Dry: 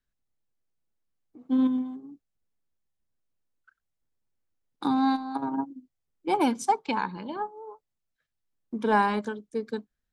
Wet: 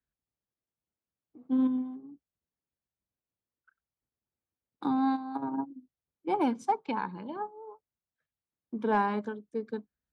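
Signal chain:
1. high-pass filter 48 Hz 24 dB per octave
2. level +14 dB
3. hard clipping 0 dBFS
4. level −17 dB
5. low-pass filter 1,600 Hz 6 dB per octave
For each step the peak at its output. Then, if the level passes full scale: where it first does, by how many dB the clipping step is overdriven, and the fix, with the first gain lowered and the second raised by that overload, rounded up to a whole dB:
−11.0, +3.0, 0.0, −17.0, −17.0 dBFS
step 2, 3.0 dB
step 2 +11 dB, step 4 −14 dB

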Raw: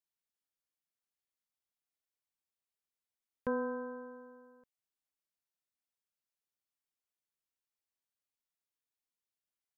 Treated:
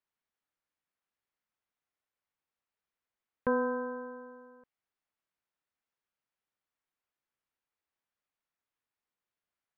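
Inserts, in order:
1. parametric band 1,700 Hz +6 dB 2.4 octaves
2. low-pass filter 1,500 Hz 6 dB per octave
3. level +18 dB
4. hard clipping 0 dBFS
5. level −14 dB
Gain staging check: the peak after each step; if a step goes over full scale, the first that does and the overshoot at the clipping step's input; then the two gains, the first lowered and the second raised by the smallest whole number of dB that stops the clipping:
−20.5, −21.5, −3.5, −3.5, −17.5 dBFS
no step passes full scale

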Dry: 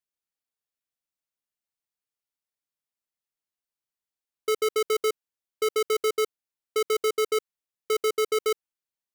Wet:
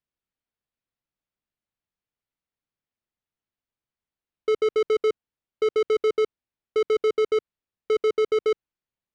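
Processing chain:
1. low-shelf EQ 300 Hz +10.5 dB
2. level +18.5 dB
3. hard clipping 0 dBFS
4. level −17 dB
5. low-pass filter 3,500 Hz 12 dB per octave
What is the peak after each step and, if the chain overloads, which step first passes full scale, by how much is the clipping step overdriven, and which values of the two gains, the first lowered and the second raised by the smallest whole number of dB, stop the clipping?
−15.0, +3.5, 0.0, −17.0, −17.0 dBFS
step 2, 3.5 dB
step 2 +14.5 dB, step 4 −13 dB

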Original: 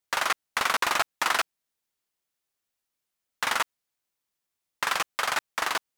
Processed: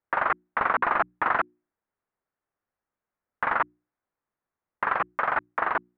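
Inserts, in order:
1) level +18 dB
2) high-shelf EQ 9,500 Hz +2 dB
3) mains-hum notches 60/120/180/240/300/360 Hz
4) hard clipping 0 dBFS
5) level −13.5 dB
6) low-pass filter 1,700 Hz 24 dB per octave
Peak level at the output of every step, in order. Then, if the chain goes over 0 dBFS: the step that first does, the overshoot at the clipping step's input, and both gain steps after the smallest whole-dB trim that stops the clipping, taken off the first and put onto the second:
+7.0, +7.5, +7.5, 0.0, −13.5, −11.5 dBFS
step 1, 7.5 dB
step 1 +10 dB, step 5 −5.5 dB

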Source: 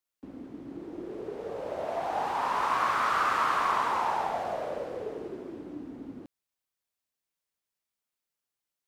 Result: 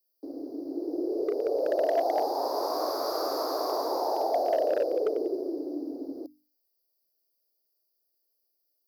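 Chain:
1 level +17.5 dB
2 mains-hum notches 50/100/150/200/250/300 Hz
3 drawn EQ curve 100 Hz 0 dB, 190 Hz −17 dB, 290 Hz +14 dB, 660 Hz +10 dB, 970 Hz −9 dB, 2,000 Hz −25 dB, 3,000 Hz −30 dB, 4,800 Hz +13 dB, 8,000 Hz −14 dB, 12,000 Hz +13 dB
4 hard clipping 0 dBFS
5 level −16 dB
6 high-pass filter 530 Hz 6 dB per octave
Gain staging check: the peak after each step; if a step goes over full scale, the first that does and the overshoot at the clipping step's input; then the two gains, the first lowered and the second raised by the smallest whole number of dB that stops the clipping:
+2.0, +2.0, +5.0, 0.0, −16.0, −15.0 dBFS
step 1, 5.0 dB
step 1 +12.5 dB, step 5 −11 dB

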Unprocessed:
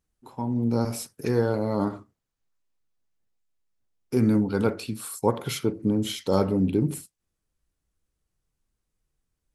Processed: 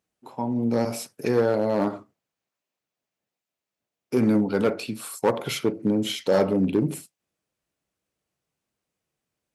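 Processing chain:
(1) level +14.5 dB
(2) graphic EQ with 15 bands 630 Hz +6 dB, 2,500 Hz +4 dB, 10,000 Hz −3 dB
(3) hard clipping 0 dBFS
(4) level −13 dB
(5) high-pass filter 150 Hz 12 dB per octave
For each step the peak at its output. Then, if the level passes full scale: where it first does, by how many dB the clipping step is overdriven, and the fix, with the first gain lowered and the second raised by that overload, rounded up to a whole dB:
+7.5, +9.0, 0.0, −13.0, −9.0 dBFS
step 1, 9.0 dB
step 1 +5.5 dB, step 4 −4 dB

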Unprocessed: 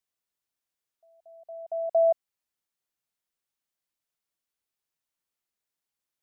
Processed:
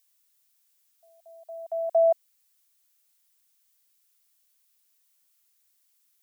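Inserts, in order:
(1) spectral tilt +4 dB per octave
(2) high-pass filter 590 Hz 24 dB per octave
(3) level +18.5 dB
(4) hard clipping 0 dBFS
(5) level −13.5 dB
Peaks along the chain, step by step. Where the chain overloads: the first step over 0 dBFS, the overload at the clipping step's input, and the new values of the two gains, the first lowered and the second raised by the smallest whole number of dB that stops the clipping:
−19.0, −20.5, −2.0, −2.0, −15.5 dBFS
no step passes full scale

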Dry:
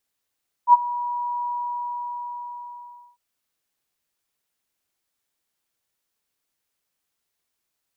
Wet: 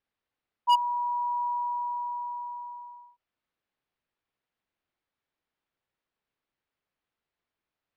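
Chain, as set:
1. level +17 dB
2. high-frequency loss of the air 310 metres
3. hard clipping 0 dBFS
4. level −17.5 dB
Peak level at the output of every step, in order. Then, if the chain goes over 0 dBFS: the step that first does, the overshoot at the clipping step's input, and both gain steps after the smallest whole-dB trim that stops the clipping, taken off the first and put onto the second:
+11.0, +9.5, 0.0, −17.5 dBFS
step 1, 9.5 dB
step 1 +7 dB, step 4 −7.5 dB

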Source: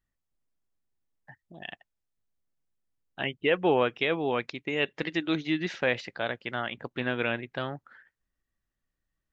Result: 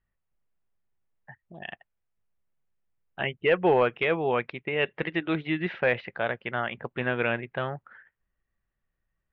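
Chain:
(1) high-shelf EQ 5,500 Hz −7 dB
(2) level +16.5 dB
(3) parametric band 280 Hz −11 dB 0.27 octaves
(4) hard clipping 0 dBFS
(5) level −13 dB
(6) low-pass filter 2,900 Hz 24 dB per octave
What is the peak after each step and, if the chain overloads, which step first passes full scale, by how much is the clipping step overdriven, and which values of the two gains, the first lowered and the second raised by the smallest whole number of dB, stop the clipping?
−11.5, +5.0, +4.5, 0.0, −13.0, −12.0 dBFS
step 2, 4.5 dB
step 2 +11.5 dB, step 5 −8 dB

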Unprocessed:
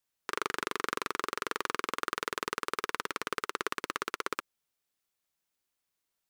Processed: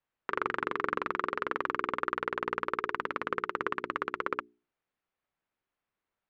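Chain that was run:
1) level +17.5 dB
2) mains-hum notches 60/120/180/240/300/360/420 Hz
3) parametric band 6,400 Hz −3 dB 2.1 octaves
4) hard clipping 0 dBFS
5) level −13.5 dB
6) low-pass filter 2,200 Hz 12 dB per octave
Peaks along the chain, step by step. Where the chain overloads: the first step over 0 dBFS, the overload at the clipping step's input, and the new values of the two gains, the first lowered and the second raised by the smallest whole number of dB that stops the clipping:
+6.5, +6.5, +5.0, 0.0, −13.5, −13.5 dBFS
step 1, 5.0 dB
step 1 +12.5 dB, step 5 −8.5 dB

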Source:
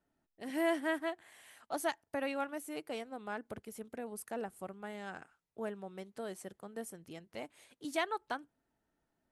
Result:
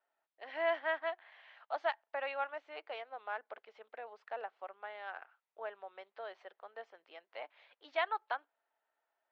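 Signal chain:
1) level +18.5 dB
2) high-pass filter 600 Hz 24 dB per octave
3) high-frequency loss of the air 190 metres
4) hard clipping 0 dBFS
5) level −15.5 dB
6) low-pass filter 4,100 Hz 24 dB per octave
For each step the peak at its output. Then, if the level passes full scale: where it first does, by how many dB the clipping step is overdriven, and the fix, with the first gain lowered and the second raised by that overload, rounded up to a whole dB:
−2.5, −3.5, −5.5, −5.5, −21.0, −21.0 dBFS
no step passes full scale

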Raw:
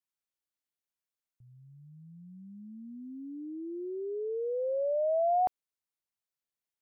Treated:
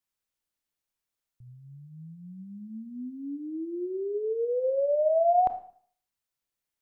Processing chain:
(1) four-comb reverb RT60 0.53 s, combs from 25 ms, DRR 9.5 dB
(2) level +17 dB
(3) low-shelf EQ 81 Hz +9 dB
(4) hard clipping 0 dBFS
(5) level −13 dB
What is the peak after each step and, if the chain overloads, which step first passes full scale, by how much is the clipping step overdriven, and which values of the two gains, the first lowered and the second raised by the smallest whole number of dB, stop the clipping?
−19.0, −2.0, −2.0, −2.0, −15.0 dBFS
no step passes full scale

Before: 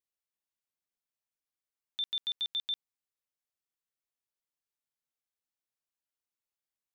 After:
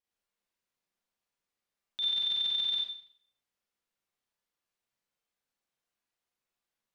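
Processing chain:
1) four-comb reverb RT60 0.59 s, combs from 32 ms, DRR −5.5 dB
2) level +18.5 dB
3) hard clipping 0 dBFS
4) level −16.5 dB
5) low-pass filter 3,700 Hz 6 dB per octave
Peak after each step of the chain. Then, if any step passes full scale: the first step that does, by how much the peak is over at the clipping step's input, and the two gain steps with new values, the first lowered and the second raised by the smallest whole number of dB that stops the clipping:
−22.0, −3.5, −3.5, −20.0, −22.5 dBFS
no step passes full scale

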